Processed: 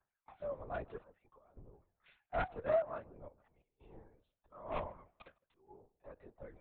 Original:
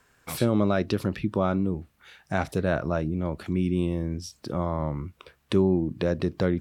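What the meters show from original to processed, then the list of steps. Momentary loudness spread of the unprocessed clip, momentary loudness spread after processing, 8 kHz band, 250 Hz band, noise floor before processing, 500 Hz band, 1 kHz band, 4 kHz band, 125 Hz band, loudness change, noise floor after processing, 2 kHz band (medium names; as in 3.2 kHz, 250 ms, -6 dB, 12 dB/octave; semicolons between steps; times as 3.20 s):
9 LU, 23 LU, under -35 dB, -30.5 dB, -66 dBFS, -13.0 dB, -10.5 dB, under -20 dB, -26.5 dB, -13.0 dB, under -85 dBFS, -14.5 dB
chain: octave divider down 2 oct, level -5 dB; reverse; compression 10:1, threshold -35 dBFS, peak gain reduction 19 dB; reverse; ladder band-pass 860 Hz, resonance 35%; phaser 0.63 Hz, delay 2.9 ms, feedback 63%; trance gate "xxxxxx.x.xxxx" 87 bpm -12 dB; one-sided clip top -45 dBFS, bottom -39 dBFS; on a send: filtered feedback delay 154 ms, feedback 36%, low-pass 1.2 kHz, level -17 dB; on the sum: LPC vocoder at 8 kHz whisper; three bands expanded up and down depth 100%; trim +8 dB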